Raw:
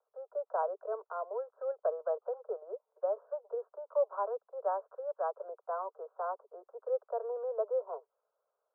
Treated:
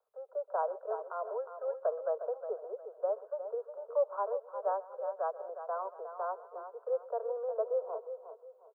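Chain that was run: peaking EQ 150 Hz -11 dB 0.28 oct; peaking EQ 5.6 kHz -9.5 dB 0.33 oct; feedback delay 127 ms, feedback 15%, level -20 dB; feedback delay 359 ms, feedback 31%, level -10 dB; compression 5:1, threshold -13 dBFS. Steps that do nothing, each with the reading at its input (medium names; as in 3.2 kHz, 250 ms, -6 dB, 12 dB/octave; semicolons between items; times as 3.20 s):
peaking EQ 150 Hz: input has nothing below 360 Hz; peaking EQ 5.6 kHz: input has nothing above 1.4 kHz; compression, threshold -13 dBFS: peak at its input -20.5 dBFS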